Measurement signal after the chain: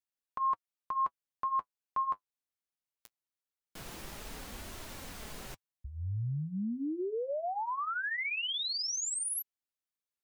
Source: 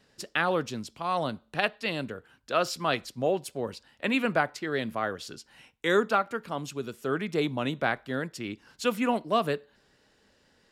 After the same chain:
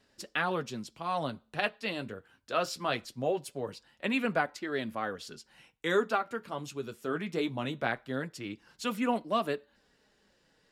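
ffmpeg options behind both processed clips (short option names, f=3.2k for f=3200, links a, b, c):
-af "flanger=delay=2.9:depth=8:regen=-42:speed=0.21:shape=triangular"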